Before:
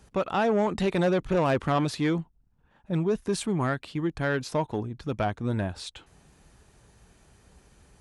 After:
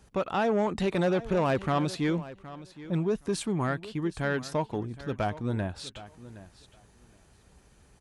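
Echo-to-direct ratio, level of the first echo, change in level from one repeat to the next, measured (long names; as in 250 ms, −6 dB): −16.5 dB, −16.5 dB, −16.0 dB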